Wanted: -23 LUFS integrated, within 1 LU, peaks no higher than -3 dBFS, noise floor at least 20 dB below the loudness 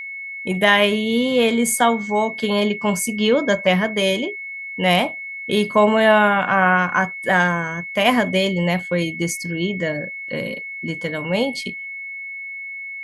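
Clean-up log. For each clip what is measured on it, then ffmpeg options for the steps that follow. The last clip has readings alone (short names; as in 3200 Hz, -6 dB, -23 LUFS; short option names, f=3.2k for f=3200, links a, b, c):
steady tone 2200 Hz; tone level -29 dBFS; loudness -19.5 LUFS; peak -1.5 dBFS; loudness target -23.0 LUFS
-> -af "bandreject=f=2.2k:w=30"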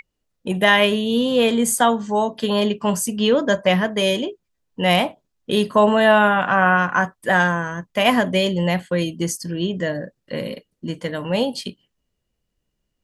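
steady tone none; loudness -19.0 LUFS; peak -2.0 dBFS; loudness target -23.0 LUFS
-> -af "volume=-4dB"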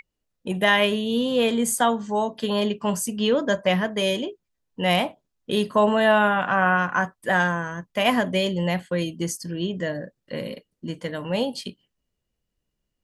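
loudness -23.0 LUFS; peak -6.0 dBFS; noise floor -80 dBFS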